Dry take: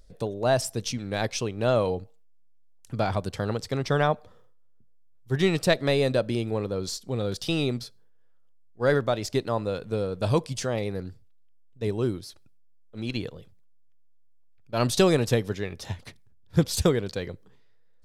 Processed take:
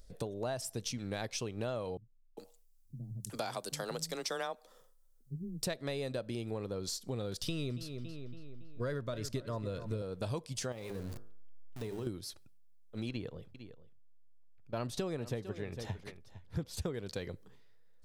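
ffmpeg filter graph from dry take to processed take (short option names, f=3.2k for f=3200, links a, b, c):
-filter_complex "[0:a]asettb=1/sr,asplit=3[a][b][c];[a]atrim=end=1.974[d];[b]atrim=start=1.97:end=5.63,asetpts=PTS-STARTPTS,afade=t=in:d=0.004:c=qsin,afade=t=out:st=3.656:d=0.004:c=qsin,bass=f=250:g=-9,treble=f=4k:g=11,afreqshift=15,acrossover=split=190[e][f];[f]adelay=400[g];[e][g]amix=inputs=2:normalize=0,atrim=end_sample=161406[h];[c]atrim=start=5.626[i];[d][h]acrossfade=d=0.004:c1=hsin:c2=qsin[j];[j][i]acrossfade=d=0.004:c1=qsin:c2=hsin,asettb=1/sr,asplit=3[k][l][m];[k]atrim=end=7.424[n];[l]atrim=start=7.42:end=10.02,asetpts=PTS-STARTPTS,afade=t=in:d=0.004:c=qsin,afade=t=out:st=2.596:d=0.004:c=qsin,asuperstop=centerf=790:order=12:qfactor=4.5,lowshelf=f=130:g=12,asplit=2[o][p];[p]adelay=280,lowpass=f=3.9k:p=1,volume=-15.5dB,asplit=2[q][r];[r]adelay=280,lowpass=f=3.9k:p=1,volume=0.51,asplit=2[s][t];[t]adelay=280,lowpass=f=3.9k:p=1,volume=0.51,asplit=2[u][v];[v]adelay=280,lowpass=f=3.9k:p=1,volume=0.51,asplit=2[w][x];[x]adelay=280,lowpass=f=3.9k:p=1,volume=0.51[y];[o][q][s][u][w][y]amix=inputs=6:normalize=0,atrim=end_sample=114660[z];[m]atrim=start=10.016[aa];[n][z]acrossfade=d=0.004:c1=hsin:c2=qsin[ab];[ab][aa]acrossfade=d=0.004:c1=qsin:c2=hsin,asettb=1/sr,asplit=3[ac][ad][ae];[ac]atrim=end=10.724[af];[ad]atrim=start=10.72:end=12.07,asetpts=PTS-STARTPTS,afade=t=in:d=0.004:c=qsin,afade=t=out:st=1.346:d=0.004:c=qsin,aeval=exprs='val(0)+0.5*0.0133*sgn(val(0))':c=same,bandreject=f=51.31:t=h:w=4,bandreject=f=102.62:t=h:w=4,bandreject=f=153.93:t=h:w=4,bandreject=f=205.24:t=h:w=4,bandreject=f=256.55:t=h:w=4,bandreject=f=307.86:t=h:w=4,bandreject=f=359.17:t=h:w=4,bandreject=f=410.48:t=h:w=4,bandreject=f=461.79:t=h:w=4,bandreject=f=513.1:t=h:w=4,bandreject=f=564.41:t=h:w=4,bandreject=f=615.72:t=h:w=4,bandreject=f=667.03:t=h:w=4,bandreject=f=718.34:t=h:w=4,bandreject=f=769.65:t=h:w=4,bandreject=f=820.96:t=h:w=4,bandreject=f=872.27:t=h:w=4,bandreject=f=923.58:t=h:w=4,bandreject=f=974.89:t=h:w=4,bandreject=f=1.0262k:t=h:w=4,bandreject=f=1.07751k:t=h:w=4,bandreject=f=1.12882k:t=h:w=4,bandreject=f=1.18013k:t=h:w=4,bandreject=f=1.23144k:t=h:w=4,bandreject=f=1.28275k:t=h:w=4,bandreject=f=1.33406k:t=h:w=4,bandreject=f=1.38537k:t=h:w=4,bandreject=f=1.43668k:t=h:w=4,bandreject=f=1.48799k:t=h:w=4,bandreject=f=1.5393k:t=h:w=4,bandreject=f=1.59061k:t=h:w=4,bandreject=f=1.64192k:t=h:w=4,acompressor=threshold=-35dB:ratio=4:attack=3.2:release=140:knee=1:detection=peak[ag];[ae]atrim=start=12.066[ah];[af][ag]acrossfade=d=0.004:c1=hsin:c2=qsin[ai];[ai][ah]acrossfade=d=0.004:c1=qsin:c2=hsin,asettb=1/sr,asplit=3[aj][ak][al];[aj]atrim=end=13.094[am];[ak]atrim=start=13.09:end=16.94,asetpts=PTS-STARTPTS,afade=t=in:d=0.004:c=qsin,afade=t=out:st=3.846:d=0.004:c=qsin,highshelf=f=3.3k:g=-11,aecho=1:1:453:0.133,atrim=end_sample=169785[an];[al]atrim=start=16.936[ao];[am][an]acrossfade=d=0.004:c1=hsin:c2=qsin[ap];[ap][ao]acrossfade=d=0.004:c1=qsin:c2=hsin,highshelf=f=6.7k:g=5.5,acompressor=threshold=-33dB:ratio=6,volume=-2dB"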